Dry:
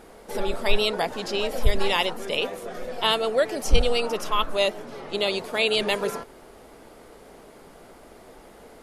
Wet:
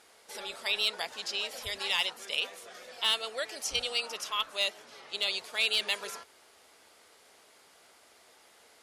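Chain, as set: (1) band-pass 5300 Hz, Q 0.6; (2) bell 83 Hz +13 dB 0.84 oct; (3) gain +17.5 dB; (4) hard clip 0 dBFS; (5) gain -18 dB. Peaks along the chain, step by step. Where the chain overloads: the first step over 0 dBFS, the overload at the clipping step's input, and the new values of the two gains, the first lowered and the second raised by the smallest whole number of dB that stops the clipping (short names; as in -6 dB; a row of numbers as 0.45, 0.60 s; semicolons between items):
-12.5, -12.5, +5.0, 0.0, -18.0 dBFS; step 3, 5.0 dB; step 3 +12.5 dB, step 5 -13 dB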